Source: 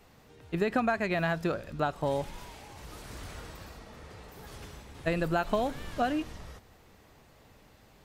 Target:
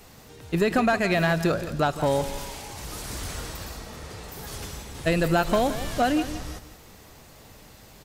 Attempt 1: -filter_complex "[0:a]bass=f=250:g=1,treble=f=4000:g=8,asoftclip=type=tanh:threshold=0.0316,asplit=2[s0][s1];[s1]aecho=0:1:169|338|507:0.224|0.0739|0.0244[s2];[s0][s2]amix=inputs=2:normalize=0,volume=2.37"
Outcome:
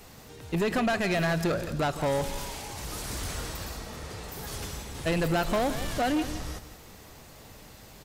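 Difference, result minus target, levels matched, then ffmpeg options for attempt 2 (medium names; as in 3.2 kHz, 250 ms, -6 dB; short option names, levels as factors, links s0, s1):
saturation: distortion +10 dB
-filter_complex "[0:a]bass=f=250:g=1,treble=f=4000:g=8,asoftclip=type=tanh:threshold=0.0944,asplit=2[s0][s1];[s1]aecho=0:1:169|338|507:0.224|0.0739|0.0244[s2];[s0][s2]amix=inputs=2:normalize=0,volume=2.37"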